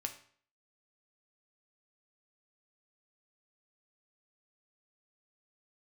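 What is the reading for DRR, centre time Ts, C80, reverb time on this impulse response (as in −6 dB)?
4.0 dB, 11 ms, 15.0 dB, 0.50 s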